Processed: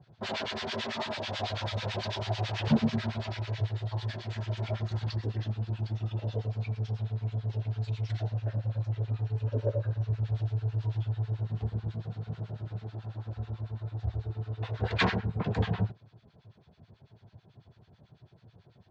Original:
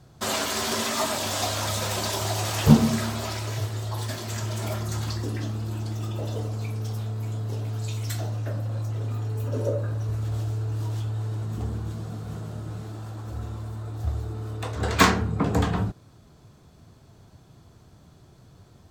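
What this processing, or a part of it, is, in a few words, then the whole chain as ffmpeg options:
guitar amplifier with harmonic tremolo: -filter_complex "[0:a]acrossover=split=1100[link_01][link_02];[link_01]aeval=exprs='val(0)*(1-1/2+1/2*cos(2*PI*9.1*n/s))':channel_layout=same[link_03];[link_02]aeval=exprs='val(0)*(1-1/2-1/2*cos(2*PI*9.1*n/s))':channel_layout=same[link_04];[link_03][link_04]amix=inputs=2:normalize=0,asoftclip=type=tanh:threshold=-15dB,highpass=86,equalizer=frequency=110:width_type=q:width=4:gain=4,equalizer=frequency=290:width_type=q:width=4:gain=-8,equalizer=frequency=1200:width_type=q:width=4:gain=-8,lowpass=frequency=4100:width=0.5412,lowpass=frequency=4100:width=1.3066"

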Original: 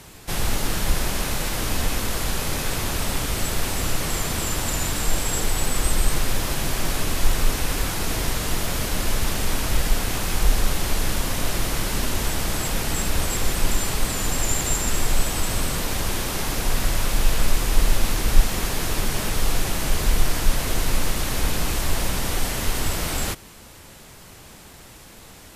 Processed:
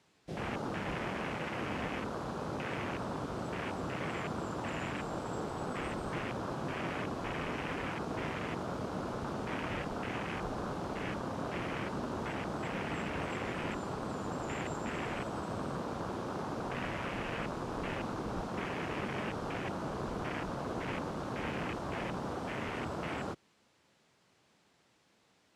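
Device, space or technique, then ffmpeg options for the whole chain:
over-cleaned archive recording: -af "highpass=150,lowpass=5700,afwtdn=0.0316,volume=-6dB"

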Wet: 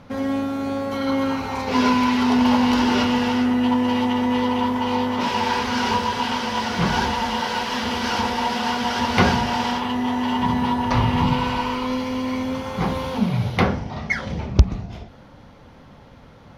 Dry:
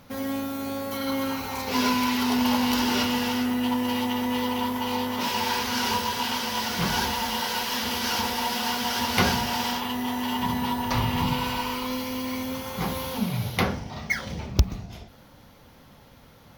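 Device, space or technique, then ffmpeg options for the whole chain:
through cloth: -af "lowpass=8300,highshelf=frequency=3200:gain=-11,volume=6.5dB"

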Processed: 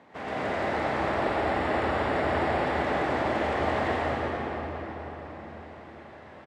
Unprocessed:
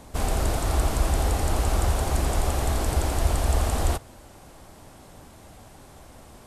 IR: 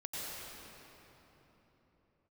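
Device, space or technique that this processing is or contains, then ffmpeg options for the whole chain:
station announcement: -filter_complex "[0:a]highpass=70,asettb=1/sr,asplit=3[link_01][link_02][link_03];[link_01]atrim=end=0.964[link_04];[link_02]atrim=start=0.96:end=2.66,asetpts=PTS-STARTPTS,afade=type=in:duration=0.004:curve=qsin,afade=type=out:start_time=1.696:duration=0.004:curve=qsin,bandreject=frequency=6200:width=7.2[link_05];[link_03]atrim=start=2.656[link_06];[link_04][link_05]acrossfade=duration=0.004:curve1=hsin:curve2=qsin[link_07];[link_07][link_06]acrossfade=duration=0.004:curve1=qsin:curve2=hsin,highpass=390,lowpass=3800,equalizer=frequency=1900:width_type=o:width=0.46:gain=7.5,aecho=1:1:110.8|142.9:0.282|0.316[link_08];[1:a]atrim=start_sample=2205[link_09];[link_08][link_09]afir=irnorm=-1:irlink=0,bass=frequency=250:gain=11,treble=frequency=4000:gain=-10,asplit=2[link_10][link_11];[link_11]adelay=493,lowpass=frequency=4100:poles=1,volume=-11.5dB,asplit=2[link_12][link_13];[link_13]adelay=493,lowpass=frequency=4100:poles=1,volume=0.51,asplit=2[link_14][link_15];[link_15]adelay=493,lowpass=frequency=4100:poles=1,volume=0.51,asplit=2[link_16][link_17];[link_17]adelay=493,lowpass=frequency=4100:poles=1,volume=0.51,asplit=2[link_18][link_19];[link_19]adelay=493,lowpass=frequency=4100:poles=1,volume=0.51[link_20];[link_10][link_12][link_14][link_16][link_18][link_20]amix=inputs=6:normalize=0"

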